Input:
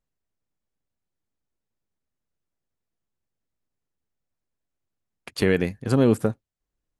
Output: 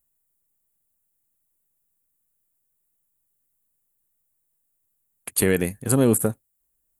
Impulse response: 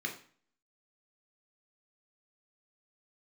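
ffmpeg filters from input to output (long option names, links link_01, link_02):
-af "aexciter=amount=13.2:drive=3.5:freq=7700"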